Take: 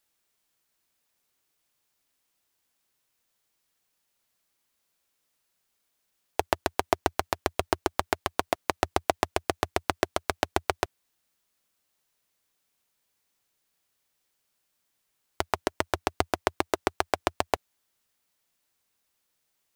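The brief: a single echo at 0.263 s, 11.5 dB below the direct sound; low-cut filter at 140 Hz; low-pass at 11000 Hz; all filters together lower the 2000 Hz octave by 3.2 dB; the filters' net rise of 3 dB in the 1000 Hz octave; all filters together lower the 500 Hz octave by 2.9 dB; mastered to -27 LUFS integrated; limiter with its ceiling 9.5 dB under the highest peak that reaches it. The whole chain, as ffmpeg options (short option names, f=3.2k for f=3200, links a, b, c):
-af "highpass=140,lowpass=11k,equalizer=f=500:t=o:g=-7,equalizer=f=1k:t=o:g=8,equalizer=f=2k:t=o:g=-7,alimiter=limit=-13dB:level=0:latency=1,aecho=1:1:263:0.266,volume=10.5dB"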